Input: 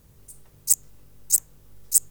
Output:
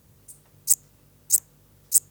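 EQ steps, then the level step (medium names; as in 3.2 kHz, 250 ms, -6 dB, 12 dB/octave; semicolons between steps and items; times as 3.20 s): high-pass 76 Hz 12 dB/octave; band-stop 410 Hz, Q 13; 0.0 dB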